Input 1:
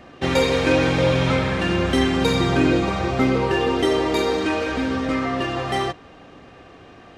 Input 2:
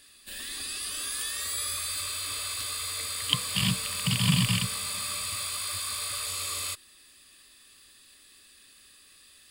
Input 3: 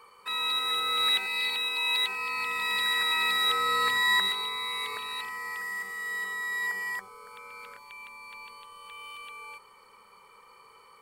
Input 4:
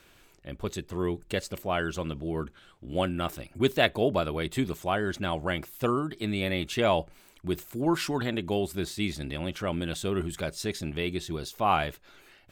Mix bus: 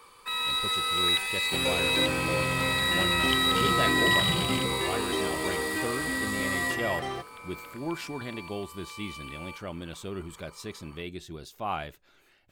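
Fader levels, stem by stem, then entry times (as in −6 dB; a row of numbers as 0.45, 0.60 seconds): −11.5, −7.0, 0.0, −7.5 decibels; 1.30, 0.00, 0.00, 0.00 seconds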